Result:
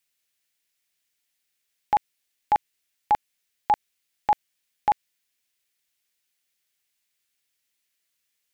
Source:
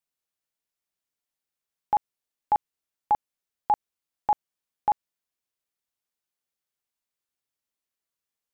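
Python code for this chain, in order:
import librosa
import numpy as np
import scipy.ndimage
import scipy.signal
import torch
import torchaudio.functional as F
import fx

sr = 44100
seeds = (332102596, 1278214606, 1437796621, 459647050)

y = fx.high_shelf_res(x, sr, hz=1500.0, db=8.0, q=1.5)
y = y * 10.0 ** (3.5 / 20.0)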